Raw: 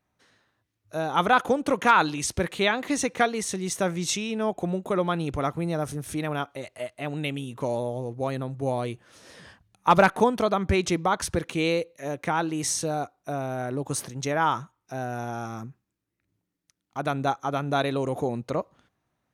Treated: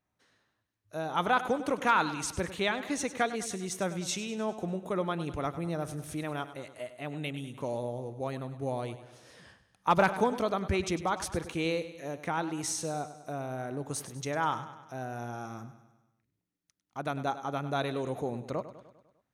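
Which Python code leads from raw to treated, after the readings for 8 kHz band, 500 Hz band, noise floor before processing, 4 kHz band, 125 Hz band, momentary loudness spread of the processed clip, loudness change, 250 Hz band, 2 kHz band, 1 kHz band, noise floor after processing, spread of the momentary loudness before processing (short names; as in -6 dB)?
-6.0 dB, -6.0 dB, -81 dBFS, -6.0 dB, -6.0 dB, 12 LU, -6.5 dB, -6.0 dB, -6.0 dB, -6.0 dB, -82 dBFS, 12 LU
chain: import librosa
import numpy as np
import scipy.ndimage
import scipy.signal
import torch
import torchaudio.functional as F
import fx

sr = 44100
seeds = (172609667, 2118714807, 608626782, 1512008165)

y = fx.echo_feedback(x, sr, ms=100, feedback_pct=56, wet_db=-13.5)
y = y * 10.0 ** (-6.5 / 20.0)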